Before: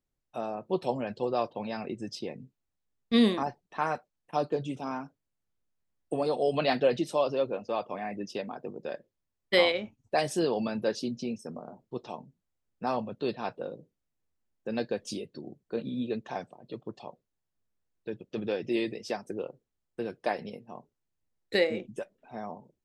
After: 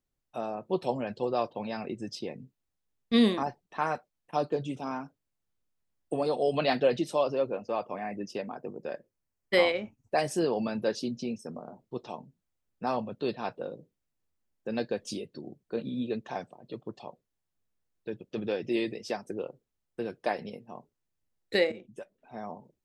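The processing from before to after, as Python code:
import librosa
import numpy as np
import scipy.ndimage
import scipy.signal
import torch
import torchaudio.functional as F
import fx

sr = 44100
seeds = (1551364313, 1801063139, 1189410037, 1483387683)

y = fx.peak_eq(x, sr, hz=3600.0, db=-7.5, octaves=0.45, at=(7.23, 10.68))
y = fx.edit(y, sr, fx.fade_in_from(start_s=21.72, length_s=0.81, floor_db=-12.5), tone=tone)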